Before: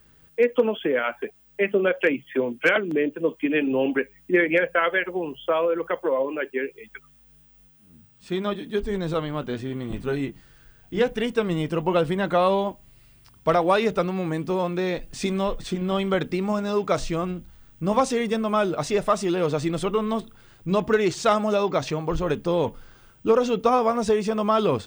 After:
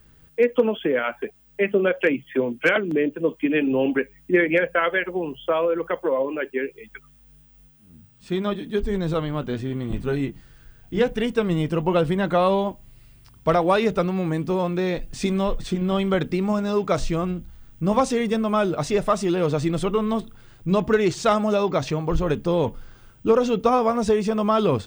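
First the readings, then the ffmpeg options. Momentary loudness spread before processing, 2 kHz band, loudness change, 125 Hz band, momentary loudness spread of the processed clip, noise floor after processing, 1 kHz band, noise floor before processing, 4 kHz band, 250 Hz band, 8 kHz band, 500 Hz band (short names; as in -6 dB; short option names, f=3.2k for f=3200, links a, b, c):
9 LU, 0.0 dB, +1.5 dB, +4.0 dB, 8 LU, -53 dBFS, +0.5 dB, -55 dBFS, 0.0 dB, +2.5 dB, 0.0 dB, +1.0 dB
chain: -af "lowshelf=f=200:g=6.5"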